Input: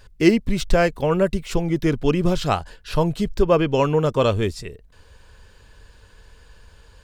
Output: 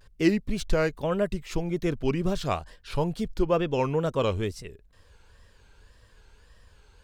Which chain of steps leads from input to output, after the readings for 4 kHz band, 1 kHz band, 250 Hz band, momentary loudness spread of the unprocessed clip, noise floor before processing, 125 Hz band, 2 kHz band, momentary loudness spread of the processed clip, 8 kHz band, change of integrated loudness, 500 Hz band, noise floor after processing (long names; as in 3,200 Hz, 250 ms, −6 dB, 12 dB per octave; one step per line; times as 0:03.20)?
−7.5 dB, −7.5 dB, −7.0 dB, 7 LU, −51 dBFS, −7.0 dB, −7.0 dB, 8 LU, −7.0 dB, −7.0 dB, −7.0 dB, −58 dBFS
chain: tape wow and flutter 140 cents
level −7 dB